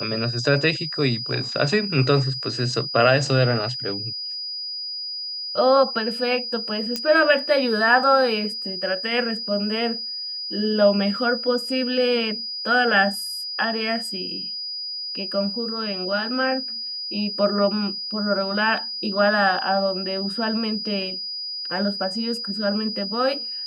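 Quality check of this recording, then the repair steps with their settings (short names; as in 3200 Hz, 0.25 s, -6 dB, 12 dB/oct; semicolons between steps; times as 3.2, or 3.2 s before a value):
tone 4900 Hz -28 dBFS
6.96 pop -11 dBFS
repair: de-click; notch 4900 Hz, Q 30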